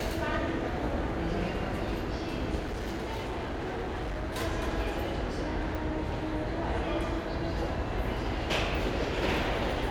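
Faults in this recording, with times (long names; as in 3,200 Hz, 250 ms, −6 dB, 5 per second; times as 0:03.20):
0:02.59–0:04.37: clipping −31 dBFS
0:05.75: click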